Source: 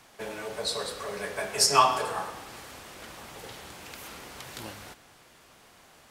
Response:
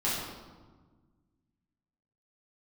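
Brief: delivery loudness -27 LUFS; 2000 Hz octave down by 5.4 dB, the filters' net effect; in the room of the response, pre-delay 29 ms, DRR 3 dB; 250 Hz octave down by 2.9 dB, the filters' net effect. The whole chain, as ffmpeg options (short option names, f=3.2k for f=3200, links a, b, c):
-filter_complex "[0:a]equalizer=f=250:t=o:g=-4,equalizer=f=2k:t=o:g=-7.5,asplit=2[a][b];[1:a]atrim=start_sample=2205,adelay=29[c];[b][c]afir=irnorm=-1:irlink=0,volume=-12dB[d];[a][d]amix=inputs=2:normalize=0,volume=-0.5dB"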